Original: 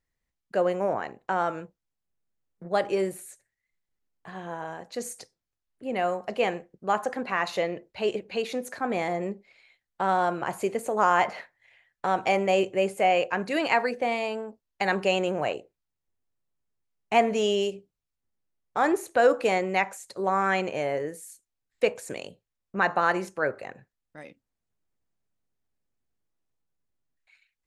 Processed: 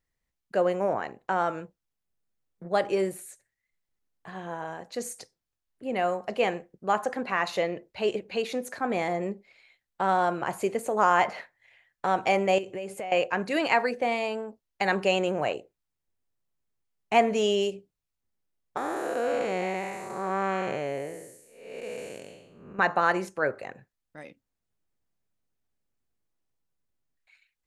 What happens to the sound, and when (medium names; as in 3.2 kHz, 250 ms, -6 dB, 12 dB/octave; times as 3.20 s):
12.58–13.12 s: compression 10:1, threshold -31 dBFS
18.77–22.79 s: spectral blur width 363 ms